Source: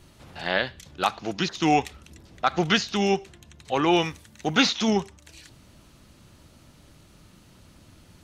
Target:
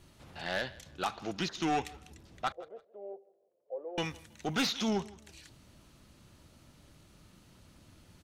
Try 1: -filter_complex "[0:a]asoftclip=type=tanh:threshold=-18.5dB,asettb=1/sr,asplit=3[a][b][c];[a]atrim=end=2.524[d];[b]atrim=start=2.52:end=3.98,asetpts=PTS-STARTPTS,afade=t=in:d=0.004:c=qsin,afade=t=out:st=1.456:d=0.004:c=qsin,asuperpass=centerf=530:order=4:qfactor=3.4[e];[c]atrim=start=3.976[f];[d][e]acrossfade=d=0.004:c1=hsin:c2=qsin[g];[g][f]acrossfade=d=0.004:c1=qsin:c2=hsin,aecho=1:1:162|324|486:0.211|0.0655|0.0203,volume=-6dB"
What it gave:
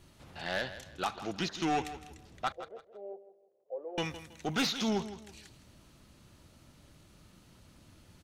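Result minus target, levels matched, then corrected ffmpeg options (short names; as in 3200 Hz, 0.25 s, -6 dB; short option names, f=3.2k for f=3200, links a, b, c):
echo-to-direct +8.5 dB
-filter_complex "[0:a]asoftclip=type=tanh:threshold=-18.5dB,asettb=1/sr,asplit=3[a][b][c];[a]atrim=end=2.524[d];[b]atrim=start=2.52:end=3.98,asetpts=PTS-STARTPTS,afade=t=in:d=0.004:c=qsin,afade=t=out:st=1.456:d=0.004:c=qsin,asuperpass=centerf=530:order=4:qfactor=3.4[e];[c]atrim=start=3.976[f];[d][e]acrossfade=d=0.004:c1=hsin:c2=qsin[g];[g][f]acrossfade=d=0.004:c1=qsin:c2=hsin,aecho=1:1:162|324:0.0794|0.0246,volume=-6dB"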